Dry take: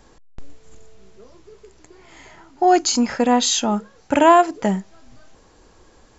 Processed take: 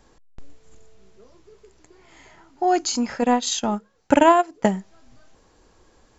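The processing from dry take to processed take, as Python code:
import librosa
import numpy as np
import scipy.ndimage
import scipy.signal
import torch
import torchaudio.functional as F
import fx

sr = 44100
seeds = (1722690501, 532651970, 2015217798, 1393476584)

y = fx.transient(x, sr, attack_db=9, sustain_db=-9, at=(3.22, 4.72))
y = y * librosa.db_to_amplitude(-5.0)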